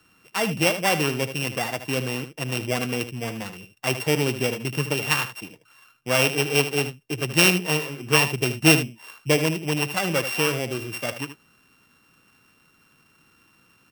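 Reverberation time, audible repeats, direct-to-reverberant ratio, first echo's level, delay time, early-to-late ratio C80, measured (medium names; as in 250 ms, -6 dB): no reverb, 1, no reverb, -11.0 dB, 77 ms, no reverb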